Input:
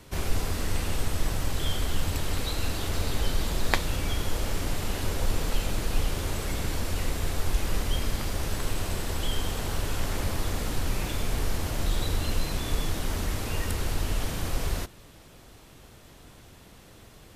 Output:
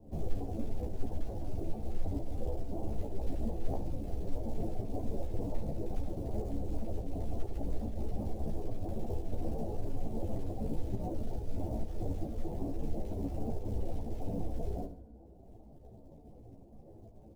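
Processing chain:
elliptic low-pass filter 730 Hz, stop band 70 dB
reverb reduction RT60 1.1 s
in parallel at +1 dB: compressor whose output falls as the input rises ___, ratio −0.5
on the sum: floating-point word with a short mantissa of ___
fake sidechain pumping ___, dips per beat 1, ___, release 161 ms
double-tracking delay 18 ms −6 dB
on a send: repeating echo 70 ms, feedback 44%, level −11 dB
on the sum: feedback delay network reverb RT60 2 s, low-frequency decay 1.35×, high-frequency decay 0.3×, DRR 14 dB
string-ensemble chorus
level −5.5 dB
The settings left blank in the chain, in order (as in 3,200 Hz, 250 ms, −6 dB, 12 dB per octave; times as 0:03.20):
−34 dBFS, 4 bits, 137 BPM, −7 dB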